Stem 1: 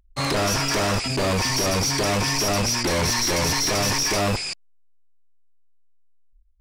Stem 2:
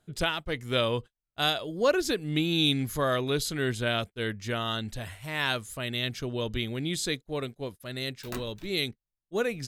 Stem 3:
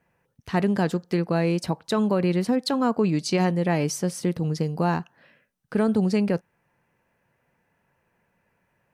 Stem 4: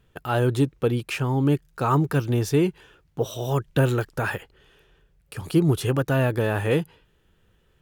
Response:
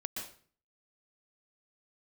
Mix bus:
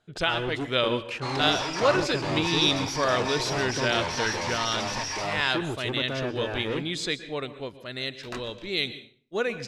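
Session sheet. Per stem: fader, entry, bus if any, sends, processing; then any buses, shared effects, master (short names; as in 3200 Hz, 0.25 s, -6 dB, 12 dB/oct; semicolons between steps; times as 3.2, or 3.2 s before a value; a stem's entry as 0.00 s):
-7.5 dB, 1.05 s, no send, no echo send, bell 880 Hz +7 dB 0.41 oct; ending taper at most 270 dB/s
+1.5 dB, 0.00 s, send -9 dB, no echo send, dry
off
-15.5 dB, 0.00 s, no send, echo send -19.5 dB, bell 330 Hz +5 dB; sample leveller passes 3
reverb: on, RT60 0.45 s, pre-delay 0.114 s
echo: echo 0.309 s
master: LPF 5200 Hz 12 dB/oct; low shelf 330 Hz -8.5 dB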